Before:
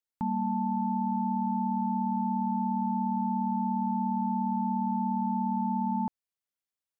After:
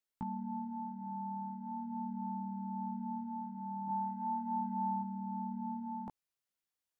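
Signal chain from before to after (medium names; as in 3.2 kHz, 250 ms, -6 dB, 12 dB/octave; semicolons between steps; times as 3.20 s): 3.88–5.03 s: graphic EQ 125/250/500 Hz -4/-7/-3 dB; compressor with a negative ratio -35 dBFS, ratio -1; chorus 0.39 Hz, delay 15.5 ms, depth 3.8 ms; trim -1.5 dB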